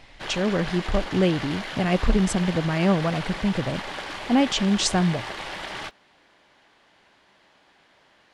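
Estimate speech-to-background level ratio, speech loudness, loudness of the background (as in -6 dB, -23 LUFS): 9.5 dB, -24.0 LUFS, -33.5 LUFS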